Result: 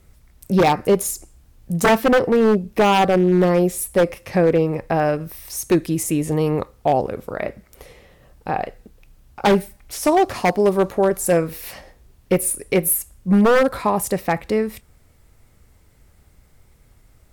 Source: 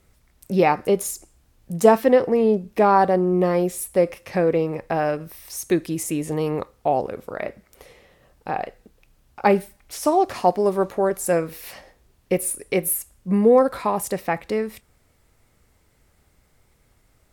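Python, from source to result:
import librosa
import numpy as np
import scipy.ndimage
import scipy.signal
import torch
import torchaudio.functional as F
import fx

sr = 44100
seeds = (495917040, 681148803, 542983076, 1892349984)

y = fx.low_shelf(x, sr, hz=170.0, db=7.5)
y = 10.0 ** (-11.0 / 20.0) * (np.abs((y / 10.0 ** (-11.0 / 20.0) + 3.0) % 4.0 - 2.0) - 1.0)
y = fx.high_shelf(y, sr, hz=11000.0, db=3.5)
y = y * 10.0 ** (2.5 / 20.0)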